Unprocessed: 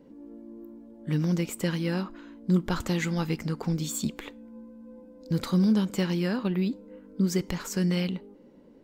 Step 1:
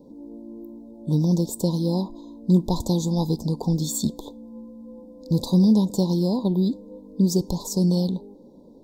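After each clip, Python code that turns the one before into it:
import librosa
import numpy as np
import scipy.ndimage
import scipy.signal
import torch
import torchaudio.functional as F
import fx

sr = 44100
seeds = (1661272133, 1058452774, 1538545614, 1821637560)

y = scipy.signal.sosfilt(scipy.signal.cheby1(5, 1.0, [1000.0, 3600.0], 'bandstop', fs=sr, output='sos'), x)
y = y * 10.0 ** (6.0 / 20.0)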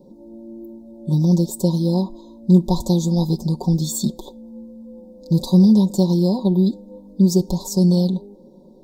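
y = x + 0.82 * np.pad(x, (int(5.4 * sr / 1000.0), 0))[:len(x)]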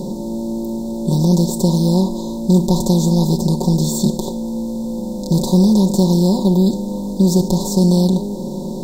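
y = fx.bin_compress(x, sr, power=0.4)
y = y * 10.0 ** (-2.0 / 20.0)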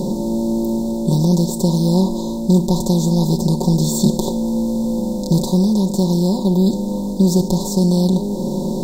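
y = fx.rider(x, sr, range_db=4, speed_s=0.5)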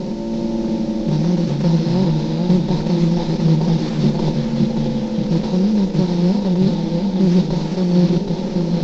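y = fx.cvsd(x, sr, bps=32000)
y = fx.echo_pitch(y, sr, ms=325, semitones=-1, count=2, db_per_echo=-3.0)
y = y * 10.0 ** (-2.5 / 20.0)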